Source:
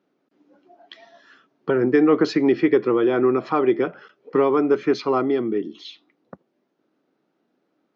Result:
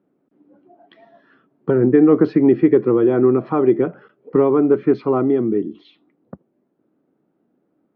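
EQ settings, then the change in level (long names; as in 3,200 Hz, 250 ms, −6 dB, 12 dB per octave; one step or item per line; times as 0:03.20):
Gaussian smoothing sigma 2.1 samples
spectral tilt −3.5 dB per octave
−1.0 dB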